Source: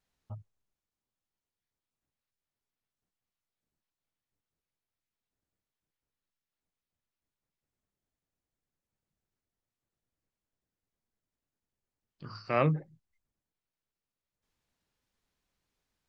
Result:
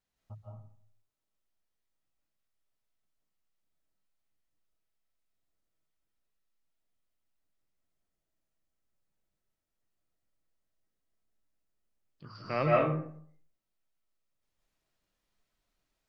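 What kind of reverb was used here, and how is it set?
comb and all-pass reverb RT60 0.58 s, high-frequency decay 0.55×, pre-delay 120 ms, DRR −4.5 dB
level −4.5 dB

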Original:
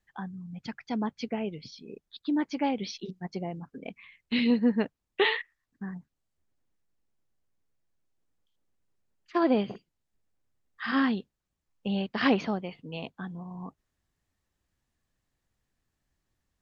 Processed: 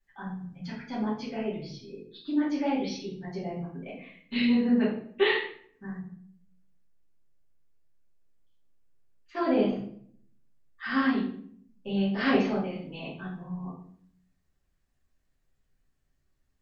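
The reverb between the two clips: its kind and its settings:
rectangular room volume 86 cubic metres, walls mixed, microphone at 2.5 metres
level −10.5 dB

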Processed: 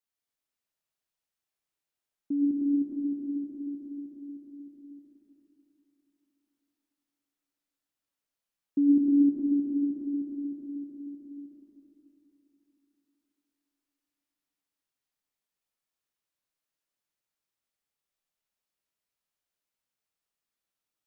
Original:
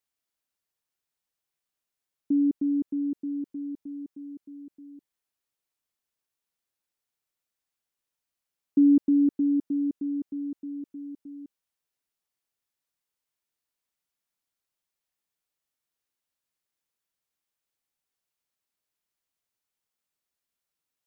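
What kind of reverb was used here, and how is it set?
comb and all-pass reverb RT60 3.6 s, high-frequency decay 0.75×, pre-delay 55 ms, DRR −3 dB
level −6 dB

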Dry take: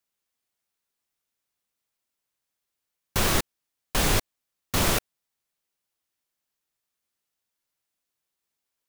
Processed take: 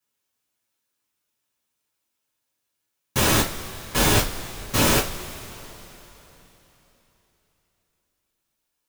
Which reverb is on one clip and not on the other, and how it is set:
coupled-rooms reverb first 0.25 s, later 3.7 s, from −22 dB, DRR −7 dB
level −3 dB

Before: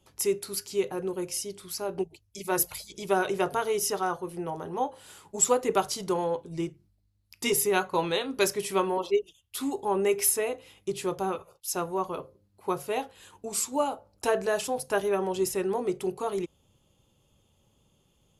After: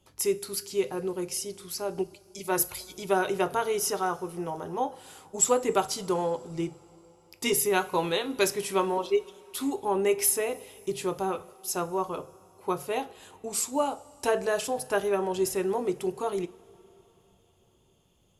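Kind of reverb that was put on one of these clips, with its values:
coupled-rooms reverb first 0.33 s, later 4 s, from −18 dB, DRR 14 dB

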